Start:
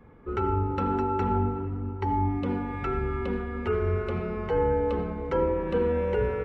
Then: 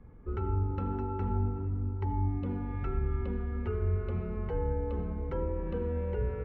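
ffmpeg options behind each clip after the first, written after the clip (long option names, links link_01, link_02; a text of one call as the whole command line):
ffmpeg -i in.wav -af "acompressor=threshold=-32dB:ratio=1.5,aemphasis=mode=reproduction:type=bsi,volume=-8.5dB" out.wav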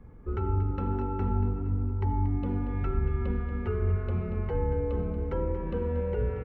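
ffmpeg -i in.wav -af "aecho=1:1:233|466|699|932|1165:0.282|0.132|0.0623|0.0293|0.0138,volume=3dB" out.wav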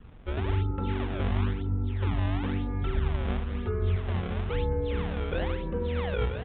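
ffmpeg -i in.wav -af "acrusher=samples=27:mix=1:aa=0.000001:lfo=1:lforange=43.2:lforate=1,aresample=8000,aresample=44100" out.wav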